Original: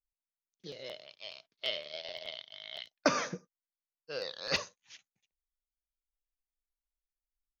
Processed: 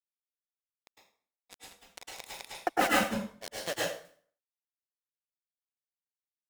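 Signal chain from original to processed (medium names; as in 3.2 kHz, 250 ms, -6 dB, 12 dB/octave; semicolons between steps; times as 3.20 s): zero-crossing glitches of -31 dBFS; expander -30 dBFS; low-pass 2.7 kHz 12 dB/octave; bass shelf 480 Hz +8 dB; comb 4.7 ms, depth 61%; in parallel at -2 dB: compression 6:1, threshold -44 dBFS, peak gain reduction 24 dB; on the sum: tape speed +17%; bit crusher 6-bit; granulator 145 ms, grains 4.7 per s, spray 215 ms; reverberation RT60 0.50 s, pre-delay 99 ms, DRR -5 dB; trim +5.5 dB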